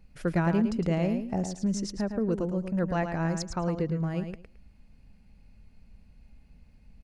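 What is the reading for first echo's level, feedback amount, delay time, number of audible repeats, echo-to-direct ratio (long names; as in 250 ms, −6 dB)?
−7.5 dB, 18%, 109 ms, 2, −7.5 dB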